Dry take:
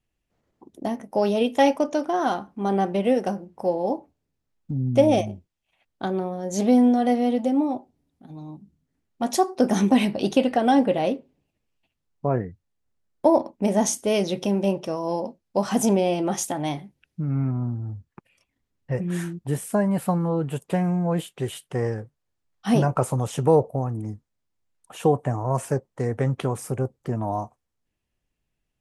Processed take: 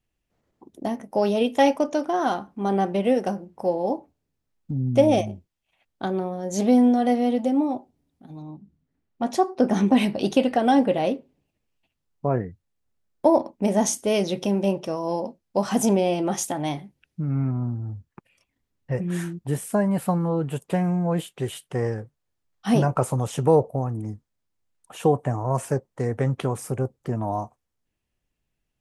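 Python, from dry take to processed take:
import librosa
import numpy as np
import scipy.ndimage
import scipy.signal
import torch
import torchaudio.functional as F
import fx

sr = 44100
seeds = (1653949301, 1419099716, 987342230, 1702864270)

y = fx.lowpass(x, sr, hz=2800.0, slope=6, at=(8.42, 9.97))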